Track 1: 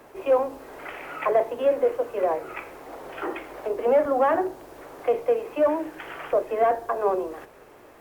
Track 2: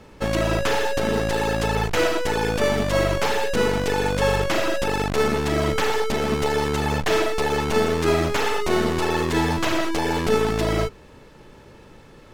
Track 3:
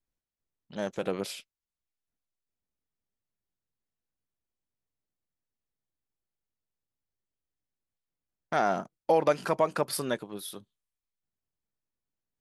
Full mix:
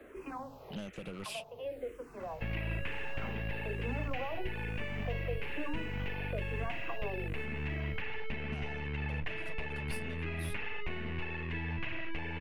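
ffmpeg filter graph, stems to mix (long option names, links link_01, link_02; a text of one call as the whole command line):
ffmpeg -i stem1.wav -i stem2.wav -i stem3.wav -filter_complex "[0:a]asplit=2[link_01][link_02];[link_02]afreqshift=-1.1[link_03];[link_01][link_03]amix=inputs=2:normalize=1,volume=-1.5dB[link_04];[1:a]lowpass=frequency=2000:width_type=q:width=3.1,bandreject=frequency=1300:width=14,adelay=2200,volume=-8dB[link_05];[2:a]equalizer=frequency=9500:width_type=o:width=0.36:gain=8.5,acompressor=threshold=-34dB:ratio=5,volume=34.5dB,asoftclip=hard,volume=-34.5dB,volume=2.5dB,asplit=2[link_06][link_07];[link_07]apad=whole_len=353213[link_08];[link_04][link_08]sidechaincompress=threshold=-45dB:ratio=8:attack=39:release=631[link_09];[link_05][link_06]amix=inputs=2:normalize=0,equalizer=frequency=2700:width=3.8:gain=12.5,acompressor=threshold=-31dB:ratio=4,volume=0dB[link_10];[link_09][link_10]amix=inputs=2:normalize=0,bass=frequency=250:gain=5,treble=frequency=4000:gain=-8,acrossover=split=170|3000[link_11][link_12][link_13];[link_12]acompressor=threshold=-47dB:ratio=2.5[link_14];[link_11][link_14][link_13]amix=inputs=3:normalize=0" out.wav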